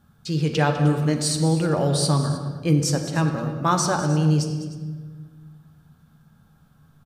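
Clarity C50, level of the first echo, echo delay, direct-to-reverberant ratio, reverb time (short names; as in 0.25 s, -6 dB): 6.0 dB, -15.0 dB, 0.202 s, 4.0 dB, 1.5 s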